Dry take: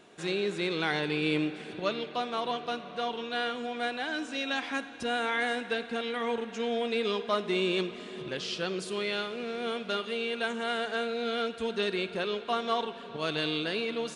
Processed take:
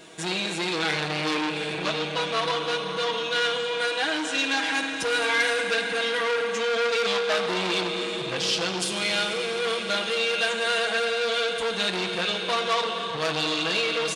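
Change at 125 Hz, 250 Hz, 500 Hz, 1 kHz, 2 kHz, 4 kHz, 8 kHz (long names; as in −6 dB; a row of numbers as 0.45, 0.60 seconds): +3.5, +1.0, +5.0, +5.5, +8.5, +9.5, +14.5 decibels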